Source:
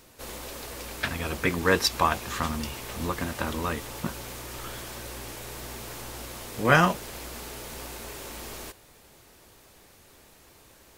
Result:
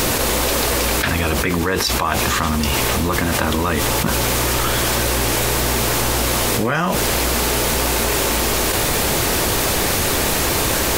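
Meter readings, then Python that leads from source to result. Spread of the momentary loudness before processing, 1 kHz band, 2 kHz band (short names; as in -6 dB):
16 LU, +9.5 dB, +10.0 dB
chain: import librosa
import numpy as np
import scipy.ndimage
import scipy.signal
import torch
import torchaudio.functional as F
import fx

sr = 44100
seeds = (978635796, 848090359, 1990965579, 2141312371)

y = fx.env_flatten(x, sr, amount_pct=100)
y = y * 10.0 ** (-3.0 / 20.0)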